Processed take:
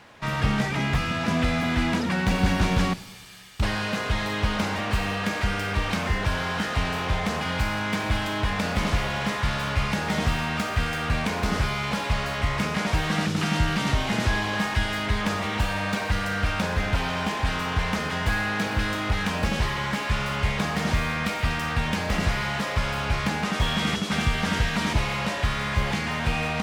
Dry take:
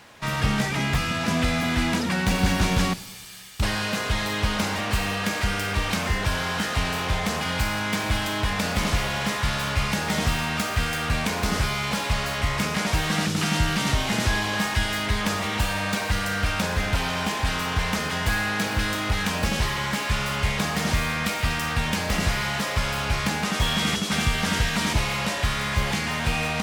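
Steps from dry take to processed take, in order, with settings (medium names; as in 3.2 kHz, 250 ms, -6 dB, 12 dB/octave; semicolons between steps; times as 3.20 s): treble shelf 5 kHz -10 dB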